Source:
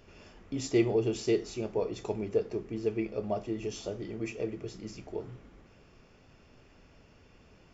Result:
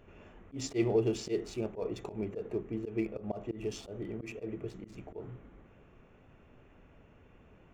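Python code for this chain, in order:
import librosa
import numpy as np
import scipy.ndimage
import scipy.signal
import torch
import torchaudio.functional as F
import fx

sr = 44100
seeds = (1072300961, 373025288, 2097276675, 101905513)

y = fx.wiener(x, sr, points=9)
y = fx.auto_swell(y, sr, attack_ms=106.0)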